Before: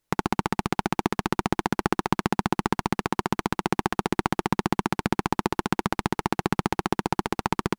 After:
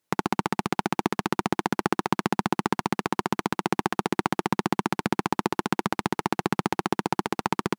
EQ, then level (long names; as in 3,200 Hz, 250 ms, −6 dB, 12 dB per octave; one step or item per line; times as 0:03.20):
high-pass filter 140 Hz 12 dB per octave
0.0 dB